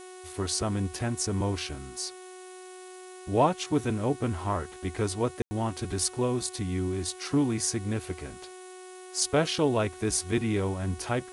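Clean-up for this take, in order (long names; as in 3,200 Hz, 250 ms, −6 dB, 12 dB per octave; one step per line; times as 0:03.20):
hum removal 368.7 Hz, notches 11
ambience match 0:05.42–0:05.51
noise reduction from a noise print 29 dB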